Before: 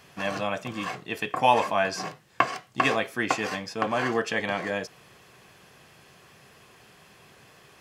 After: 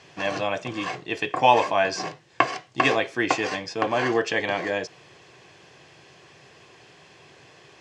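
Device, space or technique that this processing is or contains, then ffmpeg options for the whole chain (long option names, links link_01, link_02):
car door speaker: -af "highpass=88,equalizer=frequency=210:width_type=q:width=4:gain=-9,equalizer=frequency=340:width_type=q:width=4:gain=4,equalizer=frequency=1300:width_type=q:width=4:gain=-6,lowpass=frequency=7200:width=0.5412,lowpass=frequency=7200:width=1.3066,volume=3.5dB"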